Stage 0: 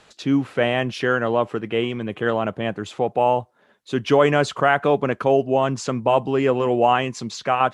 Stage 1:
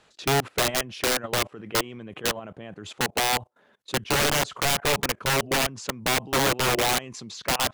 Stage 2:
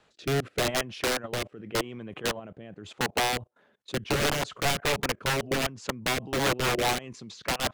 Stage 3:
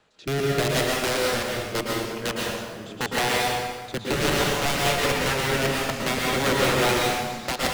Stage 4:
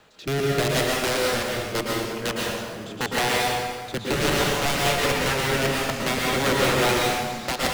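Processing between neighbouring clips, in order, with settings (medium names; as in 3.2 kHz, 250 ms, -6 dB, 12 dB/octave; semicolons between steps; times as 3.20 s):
level held to a coarse grid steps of 21 dB; integer overflow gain 19 dB; trim +2.5 dB
treble shelf 4.7 kHz -5.5 dB; rotary cabinet horn 0.85 Hz, later 5 Hz, at 3.03 s
plate-style reverb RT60 1.5 s, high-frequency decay 0.8×, pre-delay 100 ms, DRR -3.5 dB
companding laws mixed up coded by mu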